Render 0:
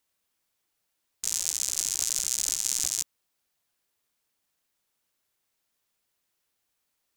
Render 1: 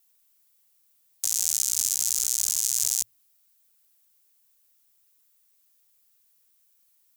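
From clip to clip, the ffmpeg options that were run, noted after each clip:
-af "aemphasis=mode=production:type=75kf,alimiter=limit=0dB:level=0:latency=1:release=41,afreqshift=-120,volume=-3dB"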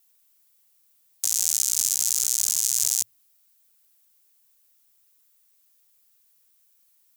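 -af "highpass=f=84:p=1,volume=2dB"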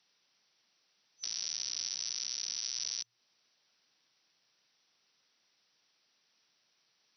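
-af "afftfilt=real='re*between(b*sr/4096,110,6000)':imag='im*between(b*sr/4096,110,6000)':win_size=4096:overlap=0.75,alimiter=level_in=1.5dB:limit=-24dB:level=0:latency=1:release=255,volume=-1.5dB,volume=4.5dB"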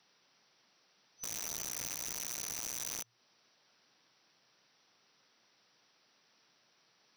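-filter_complex "[0:a]acrossover=split=1800[a][b];[a]acontrast=87[c];[c][b]amix=inputs=2:normalize=0,aeval=exprs='(mod(37.6*val(0)+1,2)-1)/37.6':c=same,volume=2dB"

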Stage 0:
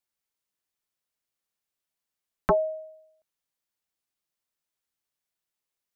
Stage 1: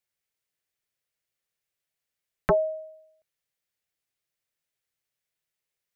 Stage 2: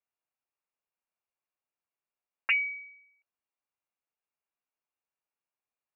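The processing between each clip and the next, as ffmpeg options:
-af "equalizer=f=125:t=o:w=1:g=6,equalizer=f=250:t=o:w=1:g=-5,equalizer=f=500:t=o:w=1:g=4,equalizer=f=1k:t=o:w=1:g=-5,equalizer=f=2k:t=o:w=1:g=5"
-af "lowpass=f=2.5k:t=q:w=0.5098,lowpass=f=2.5k:t=q:w=0.6013,lowpass=f=2.5k:t=q:w=0.9,lowpass=f=2.5k:t=q:w=2.563,afreqshift=-2900,volume=-5dB"

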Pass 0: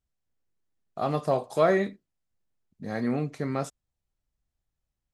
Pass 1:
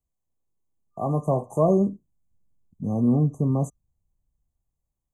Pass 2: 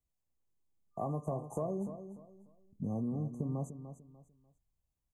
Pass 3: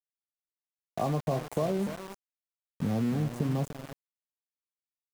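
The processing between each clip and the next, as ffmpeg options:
-filter_complex "[0:a]afftfilt=real='re*(1-between(b*sr/4096,1200,6000))':imag='im*(1-between(b*sr/4096,1200,6000))':win_size=4096:overlap=0.75,acrossover=split=230|390|4100[a][b][c][d];[a]dynaudnorm=f=280:g=9:m=12.5dB[e];[e][b][c][d]amix=inputs=4:normalize=0"
-af "acompressor=threshold=-29dB:ratio=10,aecho=1:1:296|592|888:0.282|0.0789|0.0221,volume=-4dB"
-af "aeval=exprs='val(0)*gte(abs(val(0)),0.00708)':c=same,volume=7dB"

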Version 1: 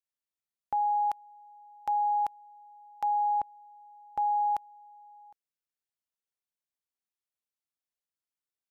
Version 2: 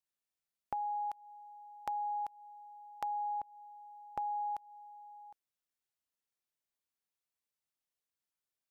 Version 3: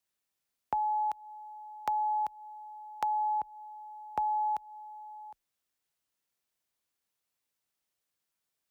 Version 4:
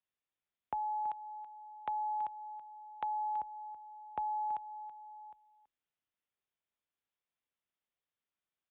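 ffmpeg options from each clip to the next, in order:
-af "acompressor=threshold=-36dB:ratio=6"
-af "afreqshift=22,volume=6.5dB"
-af "aecho=1:1:329:0.188,aresample=8000,aresample=44100,volume=-6dB"

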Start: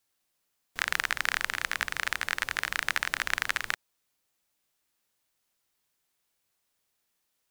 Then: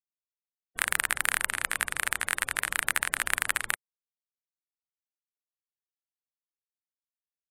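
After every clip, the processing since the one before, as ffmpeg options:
-af "afftfilt=real='re*gte(hypot(re,im),0.00447)':imag='im*gte(hypot(re,im),0.00447)':win_size=1024:overlap=0.75,highshelf=f=7.3k:t=q:w=3:g=8.5,volume=1dB"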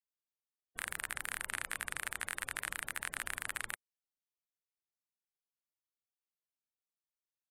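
-af "alimiter=limit=-12dB:level=0:latency=1:release=18,volume=-6dB"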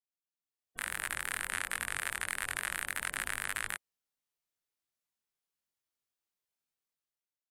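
-af "dynaudnorm=f=110:g=11:m=11.5dB,flanger=delay=20:depth=2.4:speed=0.27,volume=-4.5dB"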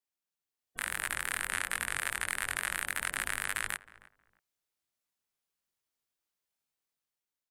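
-filter_complex "[0:a]asplit=2[a][b];[b]adelay=315,lowpass=f=1.3k:p=1,volume=-17dB,asplit=2[c][d];[d]adelay=315,lowpass=f=1.3k:p=1,volume=0.24[e];[a][c][e]amix=inputs=3:normalize=0,volume=2dB"

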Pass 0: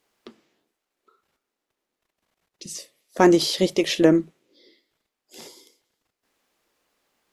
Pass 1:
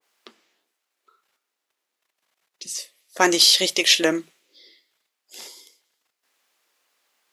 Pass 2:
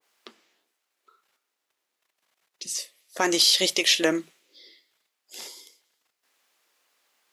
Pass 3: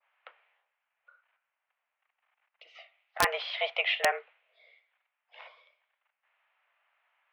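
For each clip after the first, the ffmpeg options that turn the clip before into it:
-af "highpass=f=1.2k:p=1,adynamicequalizer=threshold=0.00794:dfrequency=1700:dqfactor=0.7:tfrequency=1700:tqfactor=0.7:attack=5:release=100:ratio=0.375:range=3.5:mode=boostabove:tftype=highshelf,volume=4.5dB"
-af "alimiter=limit=-8.5dB:level=0:latency=1:release=216"
-af "highpass=f=510:t=q:w=0.5412,highpass=f=510:t=q:w=1.307,lowpass=f=2.6k:t=q:w=0.5176,lowpass=f=2.6k:t=q:w=0.7071,lowpass=f=2.6k:t=q:w=1.932,afreqshift=120,aeval=exprs='(mod(4.73*val(0)+1,2)-1)/4.73':c=same"

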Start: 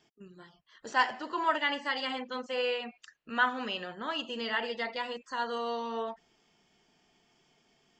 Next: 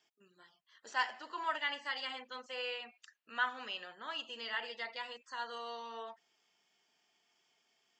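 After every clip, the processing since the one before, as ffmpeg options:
-af "highpass=f=1.1k:p=1,volume=-4.5dB"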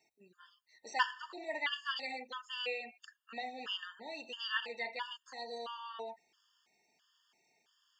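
-af "afftfilt=real='re*gt(sin(2*PI*1.5*pts/sr)*(1-2*mod(floor(b*sr/1024/910),2)),0)':imag='im*gt(sin(2*PI*1.5*pts/sr)*(1-2*mod(floor(b*sr/1024/910),2)),0)':win_size=1024:overlap=0.75,volume=4.5dB"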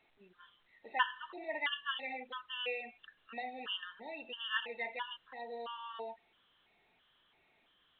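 -ar 8000 -c:a pcm_alaw

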